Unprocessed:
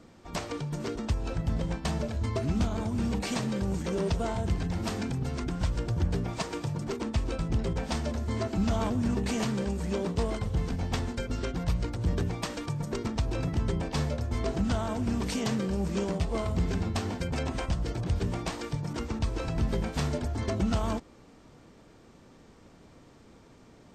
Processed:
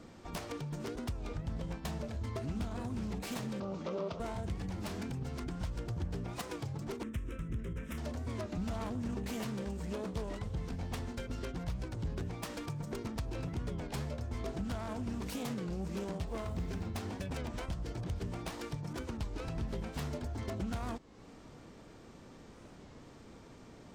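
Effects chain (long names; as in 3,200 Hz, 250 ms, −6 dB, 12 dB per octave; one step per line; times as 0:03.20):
phase distortion by the signal itself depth 0.14 ms
0:03.60–0:04.20: loudspeaker in its box 160–5,300 Hz, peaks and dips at 590 Hz +9 dB, 1,200 Hz +10 dB, 1,700 Hz −8 dB
0:16.27–0:16.86: log-companded quantiser 8 bits
downward compressor 2 to 1, threshold −44 dBFS, peak gain reduction 11.5 dB
0:07.03–0:07.98: phaser with its sweep stopped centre 1,900 Hz, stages 4
wow of a warped record 33 1/3 rpm, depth 160 cents
level +1 dB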